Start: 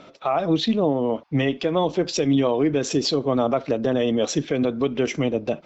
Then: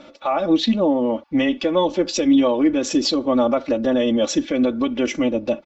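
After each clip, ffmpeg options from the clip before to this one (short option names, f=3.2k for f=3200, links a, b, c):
-af "aecho=1:1:3.5:0.87"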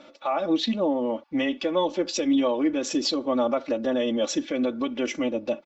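-af "lowshelf=f=140:g=-11.5,volume=-4.5dB"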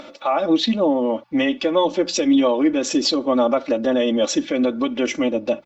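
-af "bandreject=f=60:t=h:w=6,bandreject=f=120:t=h:w=6,bandreject=f=180:t=h:w=6,acompressor=mode=upward:threshold=-40dB:ratio=2.5,volume=6dB"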